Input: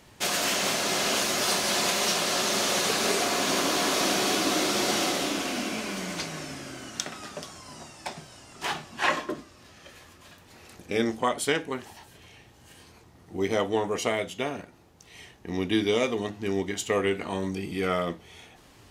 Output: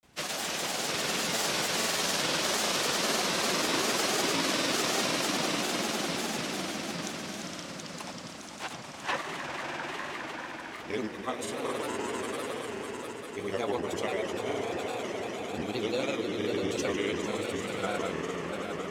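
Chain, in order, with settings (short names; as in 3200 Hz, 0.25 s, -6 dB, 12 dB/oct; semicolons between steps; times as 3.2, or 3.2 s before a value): swelling echo 80 ms, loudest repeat 8, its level -9.5 dB; grains, pitch spread up and down by 3 st; gain -5.5 dB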